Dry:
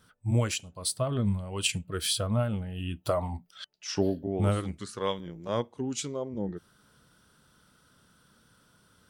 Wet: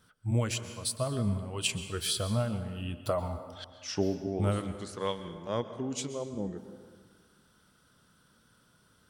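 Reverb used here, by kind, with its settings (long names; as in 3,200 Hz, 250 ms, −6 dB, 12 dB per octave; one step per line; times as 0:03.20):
dense smooth reverb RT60 1.7 s, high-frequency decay 0.6×, pre-delay 110 ms, DRR 10.5 dB
level −2.5 dB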